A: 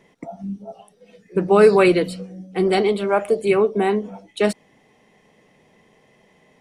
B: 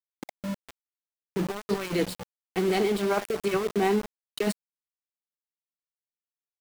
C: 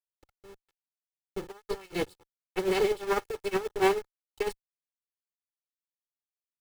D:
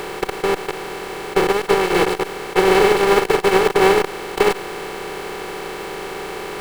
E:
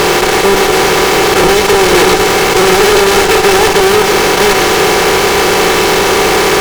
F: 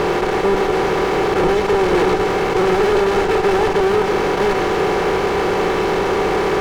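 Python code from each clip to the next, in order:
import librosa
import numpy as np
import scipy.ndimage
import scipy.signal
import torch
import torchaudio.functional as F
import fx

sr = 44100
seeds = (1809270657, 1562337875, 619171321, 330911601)

y1 = fx.peak_eq(x, sr, hz=550.0, db=-4.5, octaves=0.42)
y1 = fx.over_compress(y1, sr, threshold_db=-19.0, ratio=-0.5)
y1 = np.where(np.abs(y1) >= 10.0 ** (-25.0 / 20.0), y1, 0.0)
y1 = F.gain(torch.from_numpy(y1), -5.5).numpy()
y2 = fx.lower_of_two(y1, sr, delay_ms=2.3)
y2 = fx.upward_expand(y2, sr, threshold_db=-43.0, expansion=2.5)
y2 = F.gain(torch.from_numpy(y2), 2.5).numpy()
y3 = fx.bin_compress(y2, sr, power=0.2)
y3 = F.gain(torch.from_numpy(y3), 6.5).numpy()
y4 = fx.high_shelf_res(y3, sr, hz=7700.0, db=-7.0, q=3.0)
y4 = fx.fuzz(y4, sr, gain_db=37.0, gate_db=-37.0)
y4 = y4 + 10.0 ** (-9.0 / 20.0) * np.pad(y4, (int(105 * sr / 1000.0), 0))[:len(y4)]
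y4 = F.gain(torch.from_numpy(y4), 6.5).numpy()
y5 = fx.lowpass(y4, sr, hz=1100.0, slope=6)
y5 = F.gain(torch.from_numpy(y5), -6.0).numpy()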